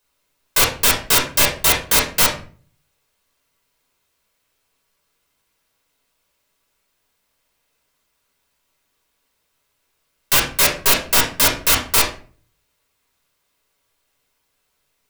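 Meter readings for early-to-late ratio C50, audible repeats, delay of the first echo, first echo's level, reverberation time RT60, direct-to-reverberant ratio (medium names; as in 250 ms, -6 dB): 8.0 dB, no echo, no echo, no echo, 0.40 s, -3.0 dB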